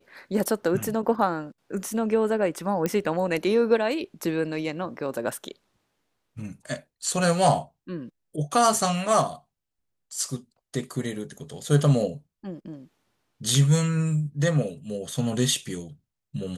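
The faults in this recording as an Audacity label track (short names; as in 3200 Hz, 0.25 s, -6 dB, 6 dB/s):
2.860000	2.860000	pop -12 dBFS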